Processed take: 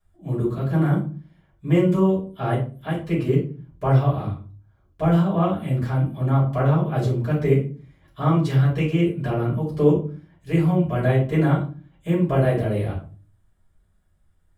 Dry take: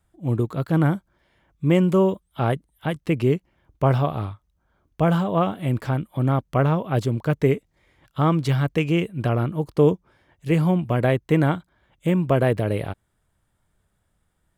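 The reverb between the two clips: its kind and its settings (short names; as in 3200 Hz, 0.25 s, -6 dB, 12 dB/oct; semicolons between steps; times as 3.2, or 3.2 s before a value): shoebox room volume 220 m³, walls furnished, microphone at 6 m; gain -12.5 dB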